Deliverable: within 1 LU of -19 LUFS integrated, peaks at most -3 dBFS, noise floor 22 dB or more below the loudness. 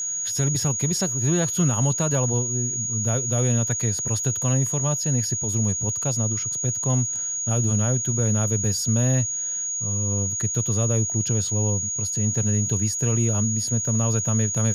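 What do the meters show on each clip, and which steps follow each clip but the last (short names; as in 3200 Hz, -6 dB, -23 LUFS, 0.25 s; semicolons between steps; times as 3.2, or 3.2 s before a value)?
ticks 19/s; steady tone 6700 Hz; tone level -25 dBFS; loudness -22.0 LUFS; peak -10.5 dBFS; loudness target -19.0 LUFS
-> de-click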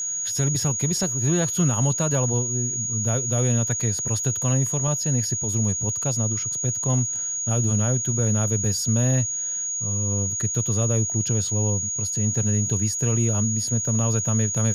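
ticks 0.20/s; steady tone 6700 Hz; tone level -25 dBFS
-> notch 6700 Hz, Q 30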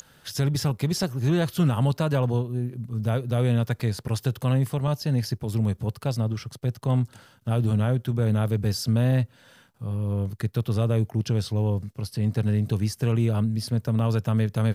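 steady tone none; loudness -25.5 LUFS; peak -12.0 dBFS; loudness target -19.0 LUFS
-> gain +6.5 dB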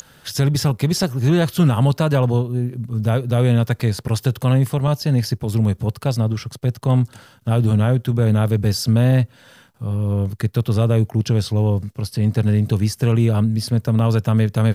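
loudness -19.0 LUFS; peak -5.5 dBFS; noise floor -51 dBFS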